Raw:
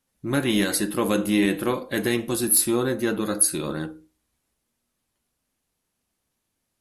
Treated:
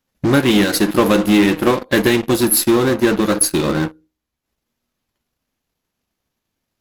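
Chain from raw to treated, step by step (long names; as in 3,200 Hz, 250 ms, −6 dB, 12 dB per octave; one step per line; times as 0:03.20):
parametric band 9,300 Hz −15 dB 0.41 octaves
transient designer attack +7 dB, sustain −7 dB
in parallel at −7.5 dB: fuzz pedal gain 34 dB, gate −40 dBFS
on the sum: level +2.5 dB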